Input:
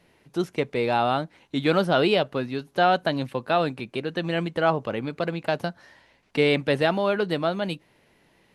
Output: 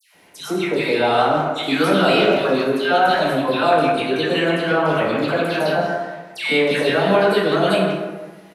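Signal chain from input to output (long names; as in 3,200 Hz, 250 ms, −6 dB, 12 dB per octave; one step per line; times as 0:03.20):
high-pass filter 240 Hz 6 dB per octave
high-shelf EQ 6,500 Hz +8 dB
in parallel at −3 dB: compressor whose output falls as the input rises −26 dBFS, ratio −0.5
on the sum: double-tracking delay 26 ms −12 dB
all-pass dispersion lows, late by 146 ms, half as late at 1,500 Hz
far-end echo of a speakerphone 160 ms, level −7 dB
dense smooth reverb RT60 1.3 s, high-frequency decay 0.5×, DRR −1.5 dB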